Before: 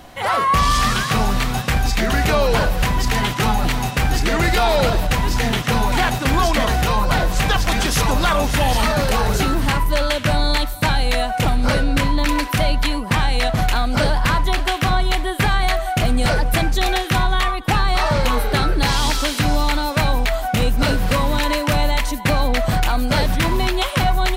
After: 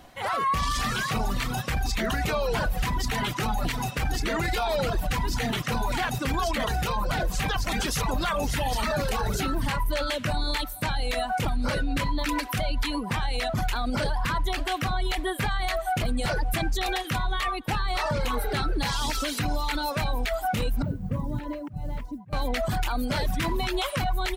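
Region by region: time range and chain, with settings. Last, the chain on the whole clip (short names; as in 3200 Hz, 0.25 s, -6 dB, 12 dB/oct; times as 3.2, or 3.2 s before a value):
20.82–22.33 auto swell 0.296 s + band-pass 130 Hz, Q 0.96 + modulation noise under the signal 33 dB
whole clip: reverb removal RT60 0.99 s; AGC; limiter -10.5 dBFS; gain -8.5 dB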